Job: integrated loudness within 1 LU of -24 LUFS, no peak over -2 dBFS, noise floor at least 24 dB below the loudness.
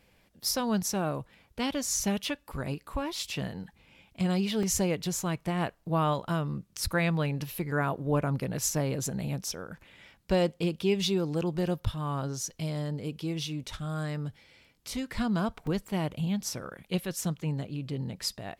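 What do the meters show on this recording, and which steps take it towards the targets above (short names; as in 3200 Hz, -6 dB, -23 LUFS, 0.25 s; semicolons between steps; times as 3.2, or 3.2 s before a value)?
dropouts 2; longest dropout 2.5 ms; loudness -31.0 LUFS; peak -14.5 dBFS; loudness target -24.0 LUFS
-> interpolate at 4.63/15.67, 2.5 ms; gain +7 dB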